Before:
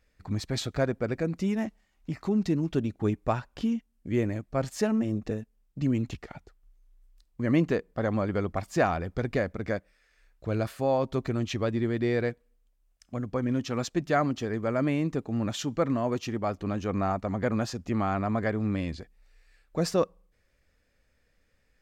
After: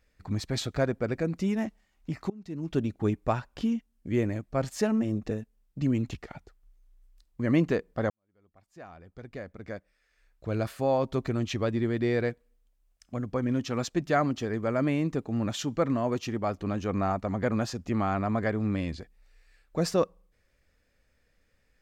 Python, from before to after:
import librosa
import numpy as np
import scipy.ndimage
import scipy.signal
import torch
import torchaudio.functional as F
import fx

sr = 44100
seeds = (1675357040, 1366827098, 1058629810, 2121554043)

y = fx.edit(x, sr, fx.fade_in_from(start_s=2.3, length_s=0.47, curve='qua', floor_db=-23.0),
    fx.fade_in_span(start_s=8.1, length_s=2.61, curve='qua'), tone=tone)